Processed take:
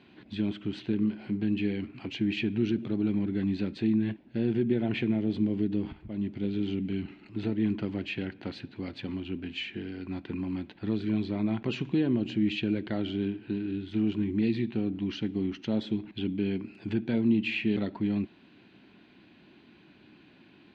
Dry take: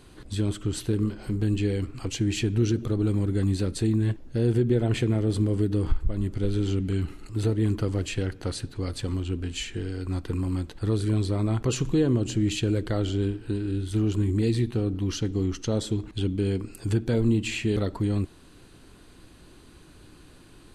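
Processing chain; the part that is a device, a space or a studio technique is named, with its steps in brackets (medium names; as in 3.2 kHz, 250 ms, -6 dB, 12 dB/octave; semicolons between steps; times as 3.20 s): 5.11–7.05 s: dynamic bell 1.4 kHz, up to -4 dB, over -49 dBFS, Q 1.1; kitchen radio (cabinet simulation 190–3600 Hz, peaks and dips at 210 Hz +7 dB, 480 Hz -9 dB, 1.2 kHz -9 dB, 2.4 kHz +5 dB); trim -2 dB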